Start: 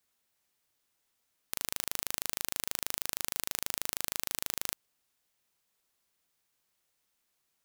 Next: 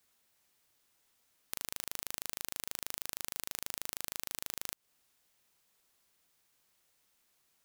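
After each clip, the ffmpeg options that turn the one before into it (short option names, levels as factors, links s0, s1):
-af "acompressor=threshold=0.0141:ratio=5,volume=1.68"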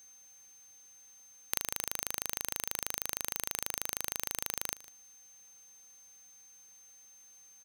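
-af "aeval=exprs='val(0)+0.001*sin(2*PI*6300*n/s)':c=same,acrusher=bits=3:mode=log:mix=0:aa=0.000001,aecho=1:1:152:0.112,volume=1.88"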